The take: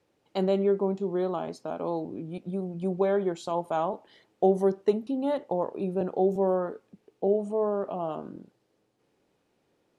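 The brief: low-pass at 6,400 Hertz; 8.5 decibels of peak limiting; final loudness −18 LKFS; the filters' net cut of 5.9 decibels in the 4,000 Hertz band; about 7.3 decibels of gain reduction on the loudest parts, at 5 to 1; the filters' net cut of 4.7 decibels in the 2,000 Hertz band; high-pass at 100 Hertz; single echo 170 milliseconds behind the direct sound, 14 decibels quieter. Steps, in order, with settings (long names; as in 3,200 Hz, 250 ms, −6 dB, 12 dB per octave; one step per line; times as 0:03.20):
high-pass filter 100 Hz
low-pass filter 6,400 Hz
parametric band 2,000 Hz −5.5 dB
parametric band 4,000 Hz −5 dB
downward compressor 5 to 1, threshold −25 dBFS
brickwall limiter −24.5 dBFS
single-tap delay 170 ms −14 dB
level +16.5 dB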